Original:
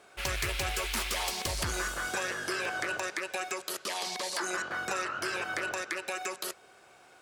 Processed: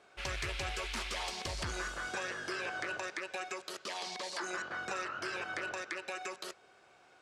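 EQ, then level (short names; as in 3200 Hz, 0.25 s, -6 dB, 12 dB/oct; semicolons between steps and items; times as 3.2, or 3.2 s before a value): LPF 6400 Hz 12 dB/oct; -5.0 dB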